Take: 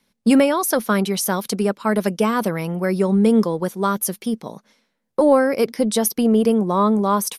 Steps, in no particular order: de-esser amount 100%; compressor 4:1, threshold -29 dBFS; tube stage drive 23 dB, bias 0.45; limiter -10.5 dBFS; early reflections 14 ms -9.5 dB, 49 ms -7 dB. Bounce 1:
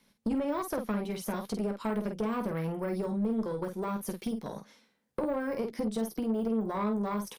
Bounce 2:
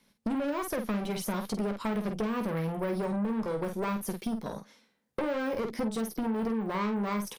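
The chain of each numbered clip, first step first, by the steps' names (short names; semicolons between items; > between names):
de-esser > limiter > compressor > early reflections > tube stage; de-esser > limiter > tube stage > early reflections > compressor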